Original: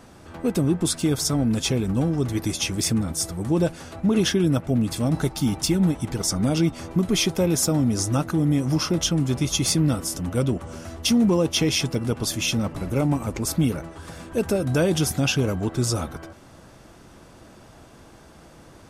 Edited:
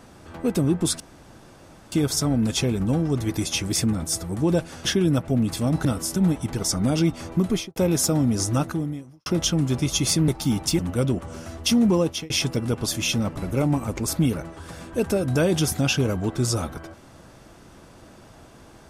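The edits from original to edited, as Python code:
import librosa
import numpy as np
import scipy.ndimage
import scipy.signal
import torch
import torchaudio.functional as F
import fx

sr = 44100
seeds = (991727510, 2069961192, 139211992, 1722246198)

y = fx.studio_fade_out(x, sr, start_s=7.07, length_s=0.28)
y = fx.edit(y, sr, fx.insert_room_tone(at_s=1.0, length_s=0.92),
    fx.cut(start_s=3.93, length_s=0.31),
    fx.swap(start_s=5.24, length_s=0.51, other_s=9.87, other_length_s=0.31),
    fx.fade_out_span(start_s=8.24, length_s=0.61, curve='qua'),
    fx.fade_out_span(start_s=11.4, length_s=0.29), tone=tone)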